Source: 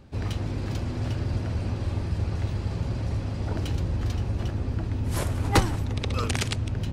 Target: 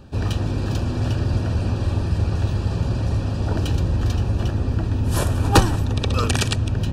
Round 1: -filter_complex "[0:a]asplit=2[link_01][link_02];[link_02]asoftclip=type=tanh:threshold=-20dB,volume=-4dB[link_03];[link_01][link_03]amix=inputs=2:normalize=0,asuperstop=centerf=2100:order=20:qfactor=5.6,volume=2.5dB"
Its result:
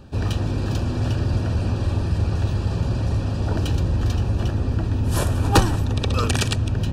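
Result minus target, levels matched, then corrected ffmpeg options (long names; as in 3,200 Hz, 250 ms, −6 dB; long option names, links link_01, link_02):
soft clipping: distortion +12 dB
-filter_complex "[0:a]asplit=2[link_01][link_02];[link_02]asoftclip=type=tanh:threshold=-9.5dB,volume=-4dB[link_03];[link_01][link_03]amix=inputs=2:normalize=0,asuperstop=centerf=2100:order=20:qfactor=5.6,volume=2.5dB"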